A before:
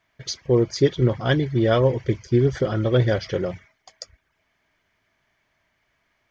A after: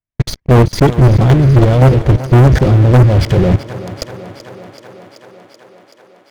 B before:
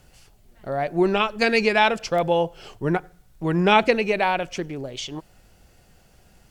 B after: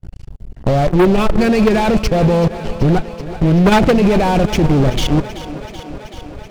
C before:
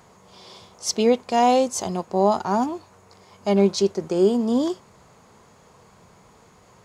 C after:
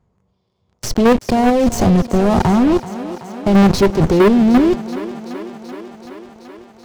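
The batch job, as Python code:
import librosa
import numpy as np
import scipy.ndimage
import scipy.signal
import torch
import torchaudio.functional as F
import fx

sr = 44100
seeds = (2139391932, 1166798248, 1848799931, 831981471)

p1 = fx.fuzz(x, sr, gain_db=35.0, gate_db=-36.0)
p2 = x + (p1 * librosa.db_to_amplitude(-5.5))
p3 = fx.peak_eq(p2, sr, hz=1300.0, db=-4.0, octaves=2.7)
p4 = fx.level_steps(p3, sr, step_db=14)
p5 = fx.riaa(p4, sr, side='playback')
p6 = fx.leveller(p5, sr, passes=5)
p7 = p6 + fx.echo_thinned(p6, sr, ms=381, feedback_pct=76, hz=160.0, wet_db=-14, dry=0)
y = p7 * librosa.db_to_amplitude(-5.5)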